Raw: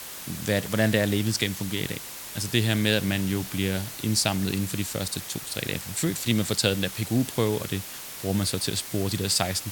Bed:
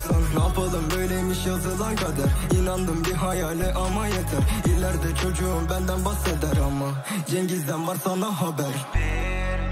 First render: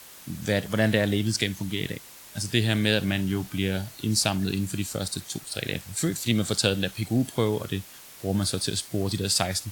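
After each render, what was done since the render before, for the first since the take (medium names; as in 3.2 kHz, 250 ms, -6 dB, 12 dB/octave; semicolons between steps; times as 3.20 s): noise print and reduce 8 dB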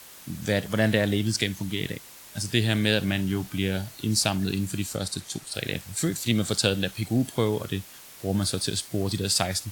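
4.96–5.54 s: low-pass 12 kHz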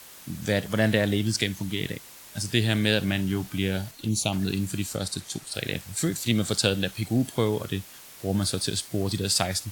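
3.91–4.33 s: touch-sensitive flanger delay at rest 5.2 ms, full sweep at -22 dBFS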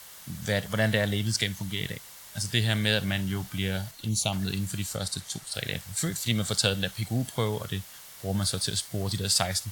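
peaking EQ 310 Hz -10 dB 1 oct; band-stop 2.5 kHz, Q 13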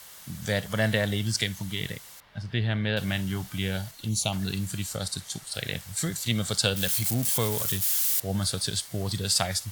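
2.20–2.97 s: distance through air 350 m; 6.76–8.20 s: zero-crossing glitches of -21.5 dBFS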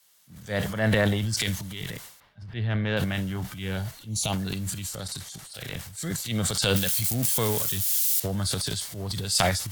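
transient shaper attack -5 dB, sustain +10 dB; three bands expanded up and down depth 70%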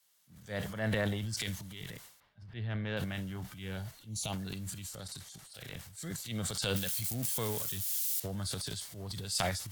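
trim -9.5 dB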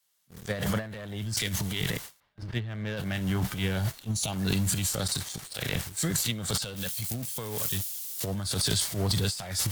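waveshaping leveller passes 3; compressor with a negative ratio -29 dBFS, ratio -0.5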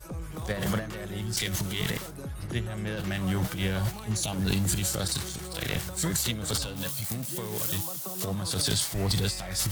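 add bed -16 dB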